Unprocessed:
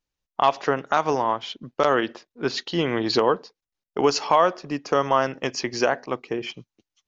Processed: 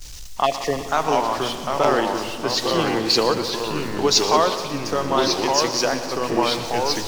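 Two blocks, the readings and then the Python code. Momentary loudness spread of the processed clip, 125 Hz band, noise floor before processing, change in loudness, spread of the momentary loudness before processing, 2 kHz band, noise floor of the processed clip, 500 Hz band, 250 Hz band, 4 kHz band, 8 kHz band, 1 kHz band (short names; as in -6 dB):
7 LU, +3.5 dB, under -85 dBFS, +3.0 dB, 11 LU, +1.5 dB, -32 dBFS, +2.0 dB, +3.5 dB, +9.0 dB, n/a, +2.0 dB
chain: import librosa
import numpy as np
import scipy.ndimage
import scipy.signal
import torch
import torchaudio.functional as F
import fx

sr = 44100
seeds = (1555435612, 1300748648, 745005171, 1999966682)

p1 = x + 0.5 * 10.0 ** (-32.0 / 20.0) * np.sign(x)
p2 = fx.echo_pitch(p1, sr, ms=638, semitones=-2, count=2, db_per_echo=-3.0)
p3 = fx.low_shelf(p2, sr, hz=69.0, db=6.5)
p4 = fx.rider(p3, sr, range_db=4, speed_s=2.0)
p5 = fx.spec_erase(p4, sr, start_s=0.46, length_s=0.42, low_hz=760.0, high_hz=1700.0)
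p6 = fx.peak_eq(p5, sr, hz=6000.0, db=8.5, octaves=1.3)
p7 = p6 + fx.echo_heads(p6, sr, ms=61, heads='second and third', feedback_pct=73, wet_db=-13.5, dry=0)
p8 = fx.band_widen(p7, sr, depth_pct=40)
y = p8 * librosa.db_to_amplitude(-2.5)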